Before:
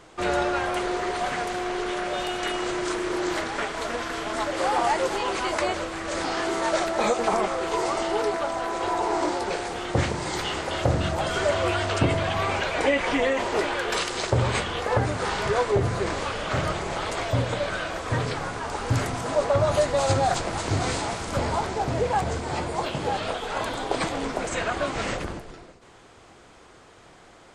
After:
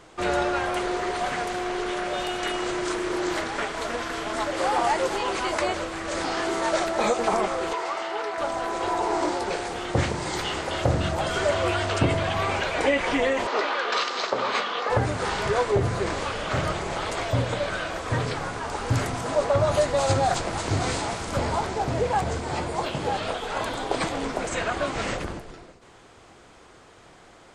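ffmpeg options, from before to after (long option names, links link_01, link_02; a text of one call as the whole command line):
ffmpeg -i in.wav -filter_complex "[0:a]asettb=1/sr,asplit=3[link_01][link_02][link_03];[link_01]atrim=end=7.734[link_04];[link_02]atrim=start=7.73:end=8.38,asetpts=PTS-STARTPTS,afade=type=in:duration=0.004:curve=qsin,afade=type=out:start_time=0.646:duration=0.004:curve=qsin,bandpass=frequency=1700:width_type=q:width=0.6[link_05];[link_03]atrim=start=8.376[link_06];[link_04][link_05]acrossfade=duration=0.004:curve1=hsin:curve2=qsin[link_07];[link_07][link_06]acrossfade=duration=0.004:curve1=qsin:curve2=hsin,asettb=1/sr,asplit=3[link_08][link_09][link_10];[link_08]atrim=end=13.474[link_11];[link_09]atrim=start=13.47:end=14.9,asetpts=PTS-STARTPTS,afade=type=in:duration=0.004:curve=qsin,afade=type=out:start_time=1.426:duration=0.004:curve=qsin,highpass=frequency=250:width=0.5412,highpass=frequency=250:width=1.3066,equalizer=frequency=340:width_type=q:width=4:gain=-8,equalizer=frequency=1200:width_type=q:width=4:gain=7,equalizer=frequency=4100:width_type=q:width=4:gain=3,lowpass=frequency=5900:width=0.5412,lowpass=frequency=5900:width=1.3066[link_12];[link_10]atrim=start=14.896[link_13];[link_11][link_12]acrossfade=duration=0.004:curve1=hsin:curve2=qsin[link_14];[link_14][link_13]acrossfade=duration=0.004:curve1=qsin:curve2=hsin" out.wav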